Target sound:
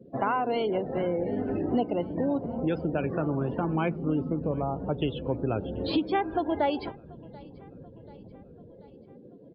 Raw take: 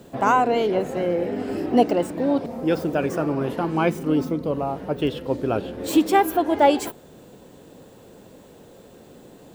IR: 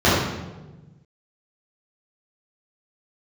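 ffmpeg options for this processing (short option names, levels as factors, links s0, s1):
-filter_complex "[0:a]acrossover=split=160|1000|2700[s0][s1][s2][s3];[s0]dynaudnorm=f=230:g=9:m=2.51[s4];[s4][s1][s2][s3]amix=inputs=4:normalize=0,aresample=11025,aresample=44100,acompressor=threshold=0.0631:ratio=3,afftdn=nr=29:nf=-40,aecho=1:1:736|1472|2208|2944:0.0668|0.0381|0.0217|0.0124,adynamicequalizer=threshold=0.00562:dfrequency=2300:dqfactor=0.7:tfrequency=2300:tqfactor=0.7:attack=5:release=100:ratio=0.375:range=2:mode=boostabove:tftype=highshelf,volume=0.841"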